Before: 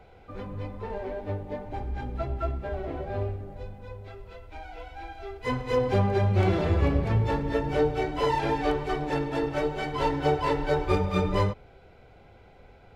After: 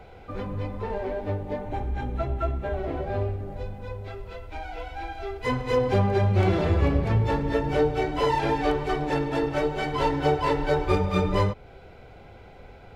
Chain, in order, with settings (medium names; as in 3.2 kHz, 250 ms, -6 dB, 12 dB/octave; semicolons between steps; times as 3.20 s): 1.61–2.79 s: band-stop 4.9 kHz, Q 5.4; in parallel at 0 dB: compression, threshold -35 dBFS, peak gain reduction 16 dB